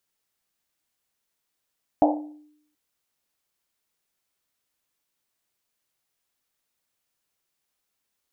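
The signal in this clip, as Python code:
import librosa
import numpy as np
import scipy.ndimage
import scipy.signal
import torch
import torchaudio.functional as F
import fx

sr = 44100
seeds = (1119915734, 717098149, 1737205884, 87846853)

y = fx.risset_drum(sr, seeds[0], length_s=0.73, hz=300.0, decay_s=0.75, noise_hz=700.0, noise_width_hz=320.0, noise_pct=45)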